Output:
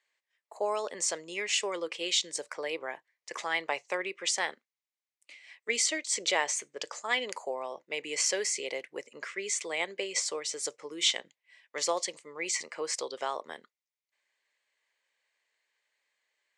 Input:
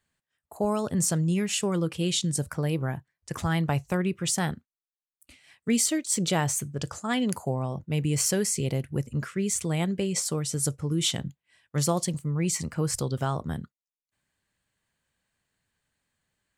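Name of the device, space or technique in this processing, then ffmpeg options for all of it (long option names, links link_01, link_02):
phone speaker on a table: -af "highpass=frequency=470:width=0.5412,highpass=frequency=470:width=1.3066,equalizer=frequency=730:width_type=q:width=4:gain=-5,equalizer=frequency=1400:width_type=q:width=4:gain=-7,equalizer=frequency=2100:width_type=q:width=4:gain=8,lowpass=frequency=7100:width=0.5412,lowpass=frequency=7100:width=1.3066,volume=1dB"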